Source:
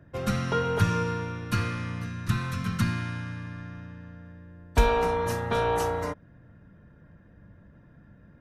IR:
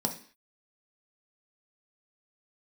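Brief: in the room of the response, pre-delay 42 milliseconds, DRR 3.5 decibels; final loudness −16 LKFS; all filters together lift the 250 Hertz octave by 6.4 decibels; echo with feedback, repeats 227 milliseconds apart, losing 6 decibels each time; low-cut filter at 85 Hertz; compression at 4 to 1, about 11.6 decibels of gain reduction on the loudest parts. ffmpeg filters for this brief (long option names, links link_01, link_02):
-filter_complex "[0:a]highpass=85,equalizer=frequency=250:width_type=o:gain=9,acompressor=threshold=-32dB:ratio=4,aecho=1:1:227|454|681|908|1135|1362:0.501|0.251|0.125|0.0626|0.0313|0.0157,asplit=2[link_01][link_02];[1:a]atrim=start_sample=2205,adelay=42[link_03];[link_02][link_03]afir=irnorm=-1:irlink=0,volume=-9dB[link_04];[link_01][link_04]amix=inputs=2:normalize=0,volume=13dB"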